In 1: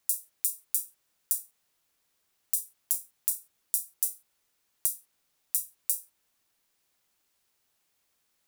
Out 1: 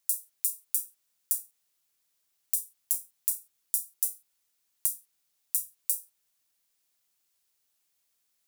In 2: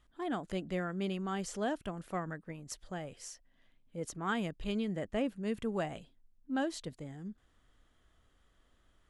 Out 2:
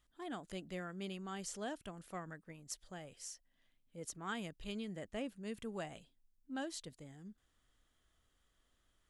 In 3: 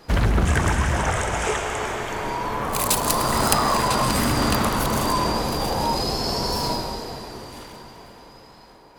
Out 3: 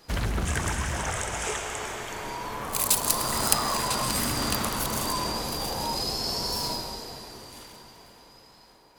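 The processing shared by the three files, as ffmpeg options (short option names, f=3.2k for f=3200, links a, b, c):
-af "highshelf=f=3k:g=9.5,volume=-9dB"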